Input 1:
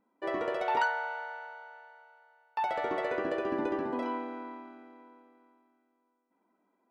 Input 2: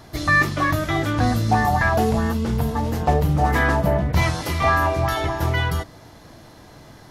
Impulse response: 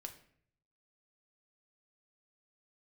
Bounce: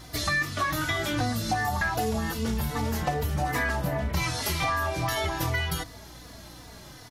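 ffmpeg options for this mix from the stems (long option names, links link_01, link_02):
-filter_complex "[0:a]highpass=frequency=1300:width=0.5412,highpass=frequency=1300:width=1.3066,acompressor=mode=upward:threshold=-47dB:ratio=2.5,aeval=exprs='val(0)+0.00398*(sin(2*PI*60*n/s)+sin(2*PI*2*60*n/s)/2+sin(2*PI*3*60*n/s)/3+sin(2*PI*4*60*n/s)/4+sin(2*PI*5*60*n/s)/5)':channel_layout=same,volume=-1dB[link_01];[1:a]highshelf=frequency=2200:gain=10,asplit=2[link_02][link_03];[link_03]adelay=3.4,afreqshift=-2.6[link_04];[link_02][link_04]amix=inputs=2:normalize=1,volume=-1dB[link_05];[link_01][link_05]amix=inputs=2:normalize=0,acompressor=threshold=-24dB:ratio=6"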